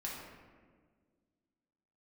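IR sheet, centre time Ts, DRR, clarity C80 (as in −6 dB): 78 ms, −4.5 dB, 3.0 dB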